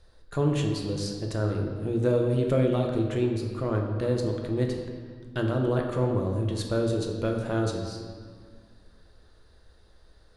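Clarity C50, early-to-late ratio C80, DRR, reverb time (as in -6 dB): 4.0 dB, 5.5 dB, 1.0 dB, 1.8 s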